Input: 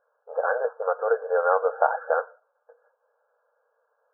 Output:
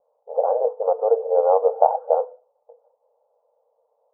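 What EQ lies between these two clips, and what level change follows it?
steep low-pass 910 Hz 48 dB/octave; hum notches 50/100/150/200/250/300/350/400/450/500 Hz; +6.0 dB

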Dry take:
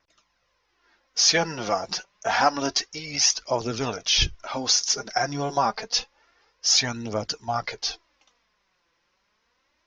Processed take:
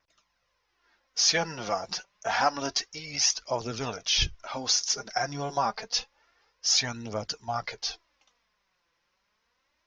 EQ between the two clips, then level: peaking EQ 320 Hz -3.5 dB 0.93 oct; -4.0 dB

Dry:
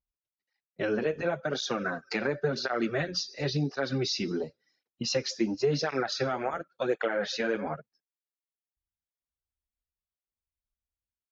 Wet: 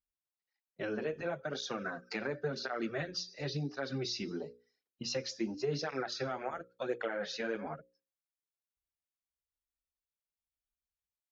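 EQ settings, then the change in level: hum notches 60/120/180/240/300/360/420/480/540 Hz; -7.0 dB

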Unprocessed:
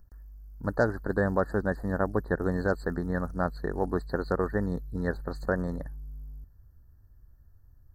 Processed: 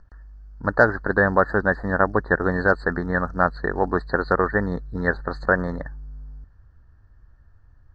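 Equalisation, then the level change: distance through air 140 m; peaking EQ 2 kHz +12 dB 2.9 oct; +3.5 dB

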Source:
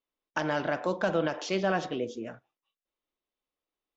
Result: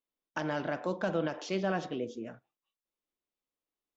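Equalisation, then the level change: peaking EQ 200 Hz +4 dB 2 oct; -5.5 dB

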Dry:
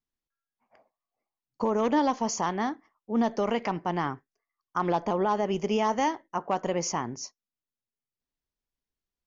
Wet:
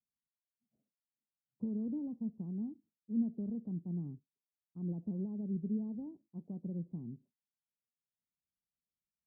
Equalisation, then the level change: high-pass 45 Hz; four-pole ladder low-pass 230 Hz, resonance 40%; bass shelf 180 Hz -9.5 dB; +5.0 dB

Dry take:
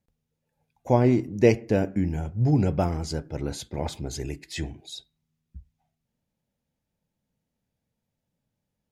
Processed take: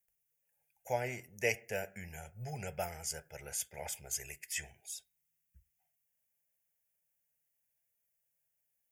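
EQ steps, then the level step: pre-emphasis filter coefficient 0.97; peaking EQ 8.2 kHz -3.5 dB 1.5 oct; static phaser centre 1.1 kHz, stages 6; +10.0 dB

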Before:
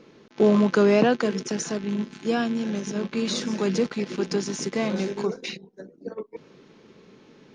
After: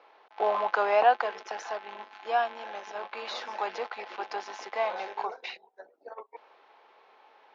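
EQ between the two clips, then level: ladder high-pass 710 Hz, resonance 65%; low-pass 4 kHz 12 dB/octave; distance through air 110 m; +9.0 dB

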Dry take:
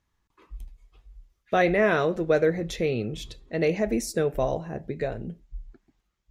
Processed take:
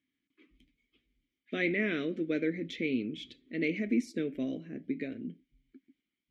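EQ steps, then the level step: vowel filter i; bass shelf 91 Hz -8.5 dB; +8.5 dB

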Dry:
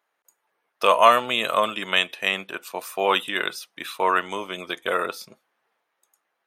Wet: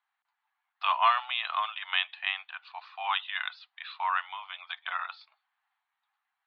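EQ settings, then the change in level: Chebyshev band-pass 750–4400 Hz, order 5; -6.5 dB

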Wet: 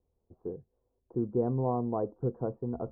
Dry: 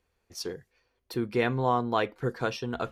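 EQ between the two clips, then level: Bessel low-pass 540 Hz, order 8; 0.0 dB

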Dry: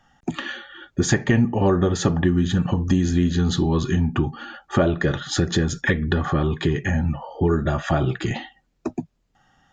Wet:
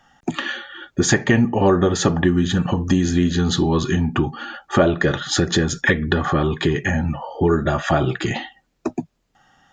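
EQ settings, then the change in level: bass shelf 180 Hz -7.5 dB; +5.0 dB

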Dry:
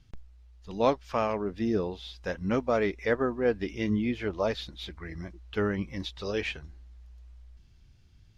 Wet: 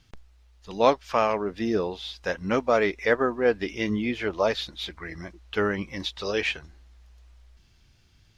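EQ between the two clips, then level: bass shelf 290 Hz -10.5 dB; +7.0 dB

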